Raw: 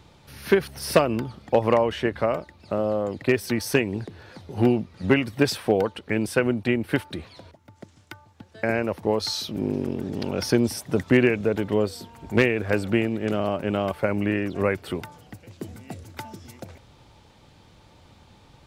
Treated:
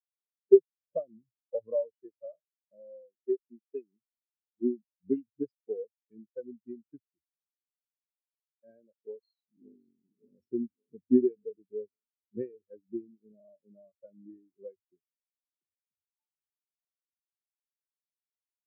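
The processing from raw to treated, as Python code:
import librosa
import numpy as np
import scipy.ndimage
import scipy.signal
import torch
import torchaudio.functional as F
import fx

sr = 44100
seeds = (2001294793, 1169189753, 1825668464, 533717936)

y = fx.highpass(x, sr, hz=160.0, slope=12, at=(3.02, 4.88))
y = fx.echo_throw(y, sr, start_s=8.9, length_s=1.01, ms=570, feedback_pct=75, wet_db=-7.0)
y = fx.hum_notches(y, sr, base_hz=50, count=2)
y = fx.spectral_expand(y, sr, expansion=4.0)
y = y * 10.0 ** (-4.0 / 20.0)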